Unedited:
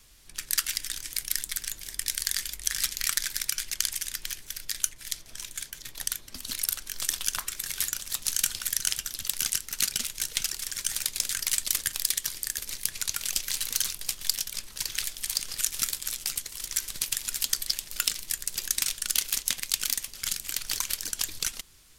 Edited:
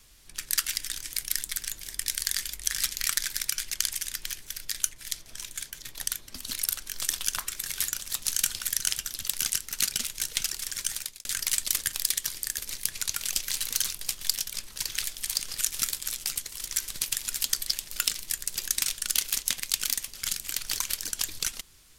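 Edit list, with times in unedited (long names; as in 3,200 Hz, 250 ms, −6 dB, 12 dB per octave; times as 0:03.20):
0:10.84–0:11.25: fade out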